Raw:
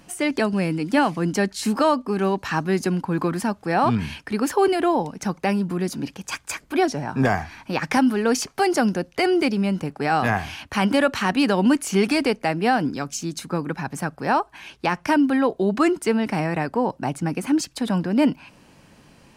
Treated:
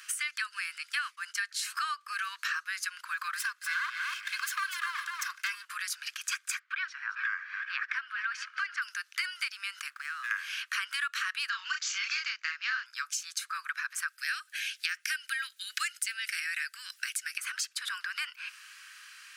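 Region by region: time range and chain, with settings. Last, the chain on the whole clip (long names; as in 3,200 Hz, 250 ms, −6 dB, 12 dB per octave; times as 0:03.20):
0:00.78–0:01.43: downward expander −20 dBFS + upward compression, threshold −21 dBFS
0:03.37–0:05.65: lower of the sound and its delayed copy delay 1.9 ms + single-tap delay 242 ms −8 dB
0:06.59–0:08.82: feedback delay that plays each chunk backwards 213 ms, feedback 51%, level −13.5 dB + band-pass filter 700–2,300 Hz
0:09.90–0:10.31: running median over 9 samples + downward compressor, threshold −34 dBFS
0:11.49–0:12.86: double-tracking delay 32 ms −3 dB + bad sample-rate conversion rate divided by 3×, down none, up filtered
0:14.08–0:17.38: inverse Chebyshev high-pass filter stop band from 780 Hz + spectral tilt +3 dB per octave
whole clip: Butterworth high-pass 1,200 Hz 72 dB per octave; parametric band 1,600 Hz +4.5 dB 0.2 octaves; downward compressor 4 to 1, threshold −40 dBFS; level +7 dB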